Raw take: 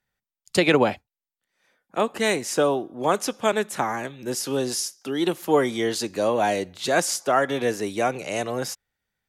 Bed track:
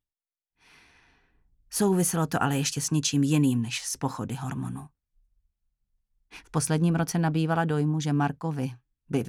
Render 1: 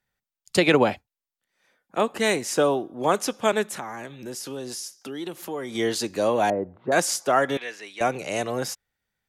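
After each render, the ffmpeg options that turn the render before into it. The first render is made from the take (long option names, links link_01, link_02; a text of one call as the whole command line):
ffmpeg -i in.wav -filter_complex "[0:a]asettb=1/sr,asplit=3[link_01][link_02][link_03];[link_01]atrim=end=3.774[link_04];[link_02]atrim=start=3.77:end=5.75,asetpts=PTS-STARTPTS,afade=type=in:duration=0.004:curve=qsin,afade=type=out:start_time=1.976:duration=0.004:curve=qsin,acompressor=threshold=-34dB:ratio=2.5:attack=3.2:release=140:knee=1:detection=peak[link_05];[link_03]atrim=start=5.746[link_06];[link_04][link_05]acrossfade=duration=0.004:curve1=hsin:curve2=qsin[link_07];[link_07][link_06]acrossfade=duration=0.004:curve1=qsin:curve2=hsin,asettb=1/sr,asplit=3[link_08][link_09][link_10];[link_08]atrim=end=6.504[link_11];[link_09]atrim=start=6.5:end=6.92,asetpts=PTS-STARTPTS,afade=type=in:duration=0.004:curve=qsin,afade=type=out:start_time=0.416:duration=0.004:curve=qsin,lowpass=frequency=1200:width=0.5412,lowpass=frequency=1200:width=1.3066[link_12];[link_10]atrim=start=6.916[link_13];[link_11][link_12]acrossfade=duration=0.004:curve1=hsin:curve2=qsin[link_14];[link_14][link_13]acrossfade=duration=0.004:curve1=qsin:curve2=hsin,asettb=1/sr,asplit=3[link_15][link_16][link_17];[link_15]atrim=end=7.574[link_18];[link_16]atrim=start=7.57:end=8.01,asetpts=PTS-STARTPTS,afade=type=in:duration=0.004:curve=qsin,afade=type=out:start_time=0.436:duration=0.004:curve=qsin,bandpass=frequency=2400:width_type=q:width=1.2[link_19];[link_17]atrim=start=8.006[link_20];[link_18][link_19]acrossfade=duration=0.004:curve1=hsin:curve2=qsin[link_21];[link_21][link_20]acrossfade=duration=0.004:curve1=qsin:curve2=hsin" out.wav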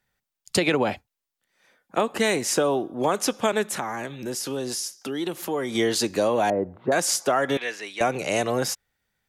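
ffmpeg -i in.wav -filter_complex "[0:a]asplit=2[link_01][link_02];[link_02]alimiter=limit=-15dB:level=0:latency=1:release=33,volume=-3dB[link_03];[link_01][link_03]amix=inputs=2:normalize=0,acompressor=threshold=-18dB:ratio=6" out.wav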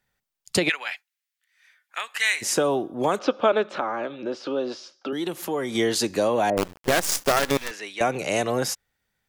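ffmpeg -i in.wav -filter_complex "[0:a]asplit=3[link_01][link_02][link_03];[link_01]afade=type=out:start_time=0.68:duration=0.02[link_04];[link_02]highpass=frequency=1900:width_type=q:width=1.9,afade=type=in:start_time=0.68:duration=0.02,afade=type=out:start_time=2.41:duration=0.02[link_05];[link_03]afade=type=in:start_time=2.41:duration=0.02[link_06];[link_04][link_05][link_06]amix=inputs=3:normalize=0,asettb=1/sr,asplit=3[link_07][link_08][link_09];[link_07]atrim=end=3.194[link_10];[link_08]atrim=start=3.19:end=5.13,asetpts=PTS-STARTPTS,afade=type=in:duration=0.004:curve=qsin,afade=type=out:start_time=1.936:duration=0.004:curve=qsin,highpass=130,equalizer=frequency=130:width_type=q:width=4:gain=-10,equalizer=frequency=190:width_type=q:width=4:gain=-6,equalizer=frequency=310:width_type=q:width=4:gain=5,equalizer=frequency=570:width_type=q:width=4:gain=9,equalizer=frequency=1300:width_type=q:width=4:gain=7,equalizer=frequency=1900:width_type=q:width=4:gain=-7,lowpass=frequency=4000:width=0.5412,lowpass=frequency=4000:width=1.3066[link_11];[link_09]atrim=start=5.126[link_12];[link_10][link_11]acrossfade=duration=0.004:curve1=hsin:curve2=qsin[link_13];[link_13][link_12]acrossfade=duration=0.004:curve1=qsin:curve2=hsin,asettb=1/sr,asplit=3[link_14][link_15][link_16];[link_14]atrim=end=6.574[link_17];[link_15]atrim=start=6.57:end=7.71,asetpts=PTS-STARTPTS,afade=type=in:duration=0.004:curve=qsin,afade=type=out:start_time=1.136:duration=0.004:curve=qsin,acrusher=bits=4:dc=4:mix=0:aa=0.000001[link_18];[link_16]atrim=start=7.706[link_19];[link_17][link_18]acrossfade=duration=0.004:curve1=hsin:curve2=qsin[link_20];[link_20][link_19]acrossfade=duration=0.004:curve1=qsin:curve2=hsin" out.wav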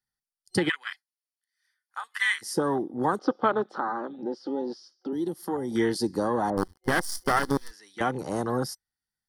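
ffmpeg -i in.wav -af "afwtdn=0.0447,superequalizer=7b=0.631:8b=0.355:12b=0.282:14b=2.82:16b=3.16" out.wav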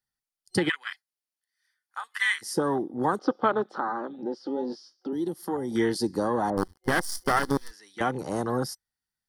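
ffmpeg -i in.wav -filter_complex "[0:a]asettb=1/sr,asplit=3[link_01][link_02][link_03];[link_01]atrim=end=4.554[link_04];[link_02]atrim=start=4.55:end=5.07,asetpts=PTS-STARTPTS,afade=type=in:duration=0.004:curve=qsin,afade=type=out:start_time=0.516:duration=0.004:curve=qsin,asplit=2[link_05][link_06];[link_06]adelay=20,volume=-8dB[link_07];[link_05][link_07]amix=inputs=2:normalize=0,atrim=end_sample=22932[link_08];[link_03]atrim=start=5.066[link_09];[link_04][link_08]acrossfade=duration=0.004:curve1=hsin:curve2=qsin[link_10];[link_10][link_09]acrossfade=duration=0.004:curve1=qsin:curve2=hsin" out.wav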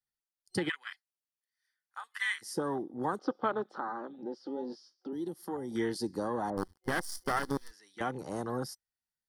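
ffmpeg -i in.wav -af "volume=-7.5dB" out.wav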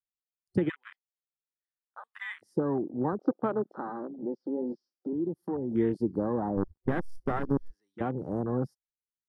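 ffmpeg -i in.wav -af "afwtdn=0.00794,tiltshelf=frequency=790:gain=9" out.wav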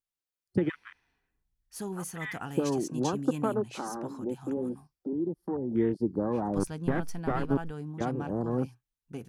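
ffmpeg -i in.wav -i bed.wav -filter_complex "[1:a]volume=-13.5dB[link_01];[0:a][link_01]amix=inputs=2:normalize=0" out.wav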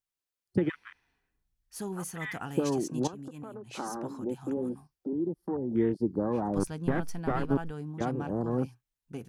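ffmpeg -i in.wav -filter_complex "[0:a]asettb=1/sr,asplit=3[link_01][link_02][link_03];[link_01]atrim=end=3.074[link_04];[link_02]atrim=start=3.07:end=3.75,asetpts=PTS-STARTPTS,afade=type=in:duration=0.004:curve=qsin,afade=type=out:start_time=0.676:duration=0.004:curve=qsin,acompressor=threshold=-38dB:ratio=20:attack=3.2:release=140:knee=1:detection=peak[link_05];[link_03]atrim=start=3.746[link_06];[link_04][link_05]acrossfade=duration=0.004:curve1=hsin:curve2=qsin[link_07];[link_07][link_06]acrossfade=duration=0.004:curve1=qsin:curve2=hsin" out.wav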